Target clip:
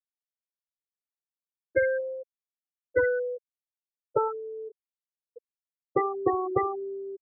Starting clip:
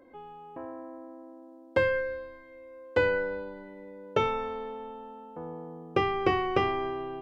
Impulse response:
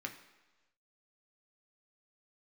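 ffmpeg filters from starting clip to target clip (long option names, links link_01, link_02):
-af "acompressor=mode=upward:threshold=-28dB:ratio=2.5,afftfilt=real='re*gte(hypot(re,im),0.2)':imag='im*gte(hypot(re,im),0.2)':win_size=1024:overlap=0.75,volume=1.5dB"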